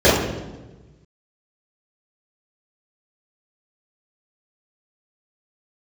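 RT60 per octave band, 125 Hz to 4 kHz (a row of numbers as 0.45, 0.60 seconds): 1.7, 1.4, 1.3, 1.1, 0.90, 0.85 seconds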